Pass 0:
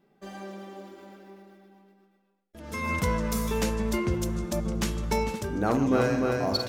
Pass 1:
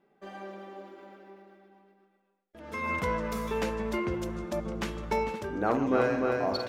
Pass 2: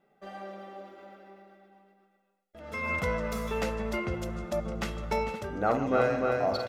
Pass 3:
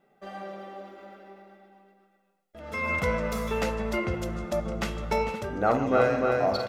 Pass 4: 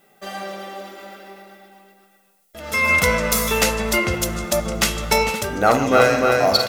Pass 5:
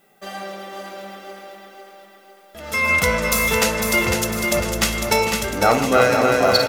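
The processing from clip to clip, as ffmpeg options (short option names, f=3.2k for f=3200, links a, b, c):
-af "bass=f=250:g=-9,treble=f=4k:g=-13"
-af "aecho=1:1:1.5:0.42"
-af "flanger=delay=7.7:depth=7.4:regen=87:speed=0.53:shape=sinusoidal,volume=7.5dB"
-af "crystalizer=i=6:c=0,volume=6dB"
-af "aecho=1:1:502|1004|1506|2008|2510|3012:0.531|0.265|0.133|0.0664|0.0332|0.0166,volume=-1dB"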